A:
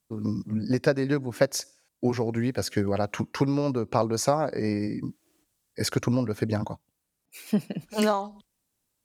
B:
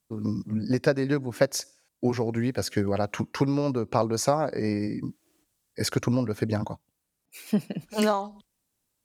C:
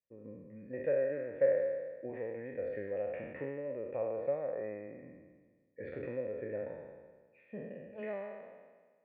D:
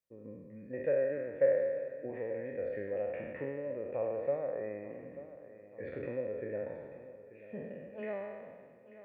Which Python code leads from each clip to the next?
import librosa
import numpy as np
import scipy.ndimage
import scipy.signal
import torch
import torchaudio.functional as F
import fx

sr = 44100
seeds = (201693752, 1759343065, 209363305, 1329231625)

y1 = x
y2 = fx.spec_trails(y1, sr, decay_s=1.49)
y2 = fx.formant_cascade(y2, sr, vowel='e')
y2 = y2 * 10.0 ** (-5.5 / 20.0)
y3 = fx.echo_feedback(y2, sr, ms=887, feedback_pct=54, wet_db=-15.5)
y3 = y3 * 10.0 ** (1.0 / 20.0)